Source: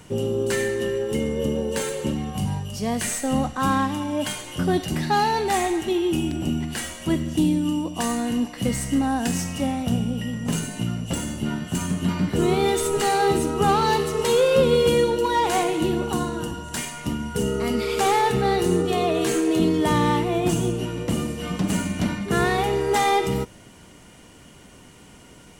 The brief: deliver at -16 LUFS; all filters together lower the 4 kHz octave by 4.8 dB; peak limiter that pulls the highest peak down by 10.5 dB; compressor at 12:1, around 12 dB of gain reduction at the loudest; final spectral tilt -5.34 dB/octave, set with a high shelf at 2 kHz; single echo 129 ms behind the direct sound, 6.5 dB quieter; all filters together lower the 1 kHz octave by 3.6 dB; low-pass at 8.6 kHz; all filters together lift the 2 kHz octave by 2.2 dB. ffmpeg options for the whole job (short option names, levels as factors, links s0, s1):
-af "lowpass=8600,equalizer=f=1000:t=o:g=-5,highshelf=f=2000:g=-6,equalizer=f=2000:t=o:g=8.5,equalizer=f=4000:t=o:g=-4.5,acompressor=threshold=0.0398:ratio=12,alimiter=level_in=1.58:limit=0.0631:level=0:latency=1,volume=0.631,aecho=1:1:129:0.473,volume=9.44"